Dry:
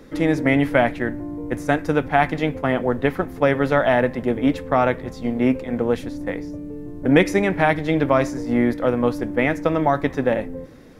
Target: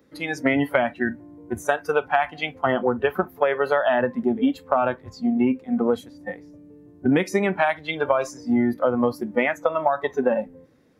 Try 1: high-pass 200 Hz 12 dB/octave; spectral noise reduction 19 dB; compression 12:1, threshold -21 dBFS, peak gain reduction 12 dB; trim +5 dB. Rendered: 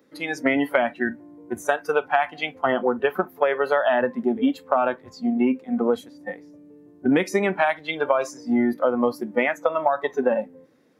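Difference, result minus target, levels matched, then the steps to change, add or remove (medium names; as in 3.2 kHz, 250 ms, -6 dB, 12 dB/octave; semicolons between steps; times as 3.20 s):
125 Hz band -5.5 dB
change: high-pass 82 Hz 12 dB/octave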